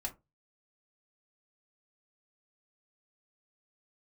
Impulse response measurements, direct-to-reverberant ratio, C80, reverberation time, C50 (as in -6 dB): -0.5 dB, 26.5 dB, 0.20 s, 17.5 dB